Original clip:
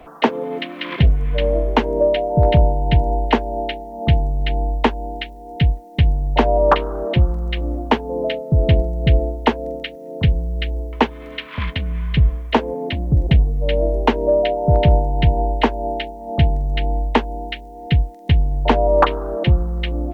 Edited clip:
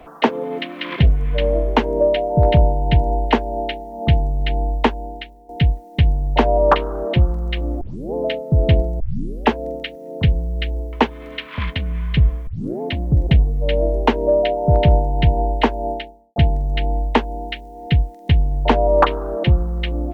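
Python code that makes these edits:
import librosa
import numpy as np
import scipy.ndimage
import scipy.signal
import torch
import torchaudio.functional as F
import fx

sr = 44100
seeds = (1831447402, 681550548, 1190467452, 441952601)

y = fx.edit(x, sr, fx.fade_out_to(start_s=4.86, length_s=0.63, floor_db=-12.5),
    fx.tape_start(start_s=7.81, length_s=0.33),
    fx.tape_start(start_s=9.0, length_s=0.5),
    fx.tape_start(start_s=12.47, length_s=0.34),
    fx.fade_out_span(start_s=15.91, length_s=0.45, curve='qua'), tone=tone)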